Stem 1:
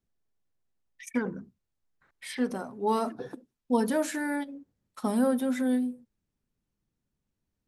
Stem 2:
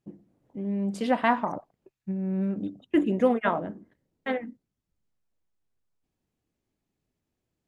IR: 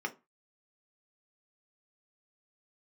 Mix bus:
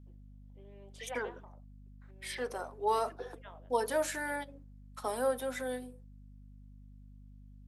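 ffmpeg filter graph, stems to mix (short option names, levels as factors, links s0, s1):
-filter_complex "[0:a]volume=0.841,asplit=2[s0][s1];[1:a]equalizer=f=3300:w=2.8:g=13.5,volume=0.168[s2];[s1]apad=whole_len=338407[s3];[s2][s3]sidechaincompress=threshold=0.00794:ratio=6:attack=29:release=1070[s4];[s0][s4]amix=inputs=2:normalize=0,highpass=f=410:w=0.5412,highpass=f=410:w=1.3066,aeval=exprs='val(0)+0.00251*(sin(2*PI*50*n/s)+sin(2*PI*2*50*n/s)/2+sin(2*PI*3*50*n/s)/3+sin(2*PI*4*50*n/s)/4+sin(2*PI*5*50*n/s)/5)':c=same"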